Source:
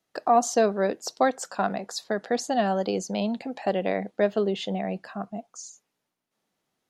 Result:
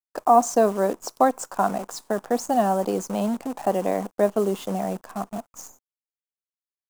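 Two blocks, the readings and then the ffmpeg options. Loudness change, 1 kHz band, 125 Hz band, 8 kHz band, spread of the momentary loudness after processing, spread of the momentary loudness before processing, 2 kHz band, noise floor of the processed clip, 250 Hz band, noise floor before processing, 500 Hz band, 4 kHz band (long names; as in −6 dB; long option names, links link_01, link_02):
+3.0 dB, +4.5 dB, +1.5 dB, +1.5 dB, 14 LU, 13 LU, −3.0 dB, below −85 dBFS, +2.5 dB, −81 dBFS, +2.5 dB, −5.0 dB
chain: -af "acrusher=bits=7:dc=4:mix=0:aa=0.000001,equalizer=frequency=125:width_type=o:width=1:gain=-3,equalizer=frequency=250:width_type=o:width=1:gain=4,equalizer=frequency=1000:width_type=o:width=1:gain=8,equalizer=frequency=2000:width_type=o:width=1:gain=-6,equalizer=frequency=4000:width_type=o:width=1:gain=-8,equalizer=frequency=8000:width_type=o:width=1:gain=4"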